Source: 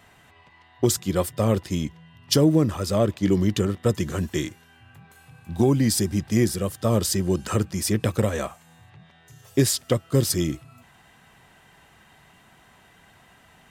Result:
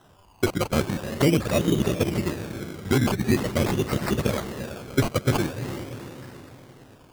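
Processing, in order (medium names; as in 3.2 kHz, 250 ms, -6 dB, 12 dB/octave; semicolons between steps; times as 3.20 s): echo that smears into a reverb 704 ms, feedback 51%, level -9 dB; granular stretch 0.52×, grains 30 ms; decimation with a swept rate 19×, swing 60% 0.44 Hz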